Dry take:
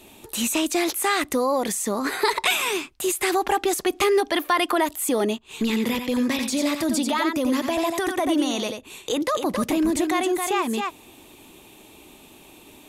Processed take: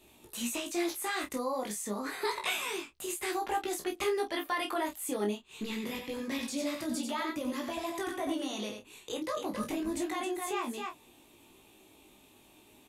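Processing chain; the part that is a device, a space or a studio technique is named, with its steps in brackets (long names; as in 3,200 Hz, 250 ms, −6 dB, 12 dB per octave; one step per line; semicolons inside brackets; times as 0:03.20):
double-tracked vocal (double-tracking delay 29 ms −7 dB; chorus effect 0.28 Hz, delay 16.5 ms, depth 2.9 ms)
level −9 dB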